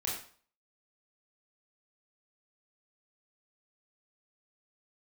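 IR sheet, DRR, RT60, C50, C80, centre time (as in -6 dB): -4.5 dB, 0.45 s, 3.5 dB, 7.5 dB, 43 ms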